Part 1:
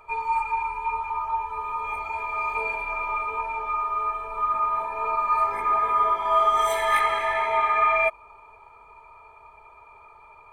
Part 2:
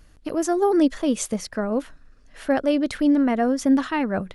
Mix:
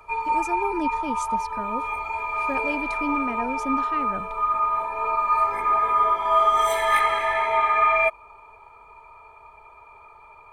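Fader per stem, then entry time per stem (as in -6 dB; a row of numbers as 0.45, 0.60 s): +1.5, -10.0 dB; 0.00, 0.00 s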